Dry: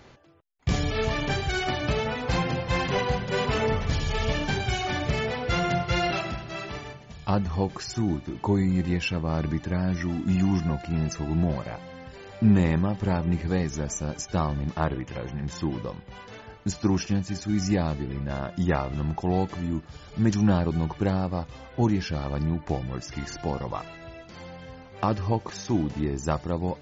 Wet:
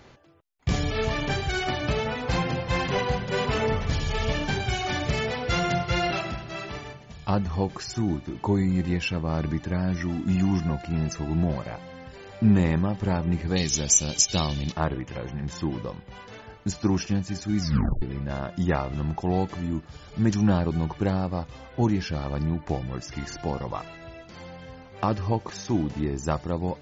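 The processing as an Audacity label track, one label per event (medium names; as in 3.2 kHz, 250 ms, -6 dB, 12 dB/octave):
4.860000	5.890000	treble shelf 4.7 kHz +6 dB
13.560000	14.720000	resonant high shelf 2.2 kHz +13.5 dB, Q 1.5
17.610000	17.610000	tape stop 0.41 s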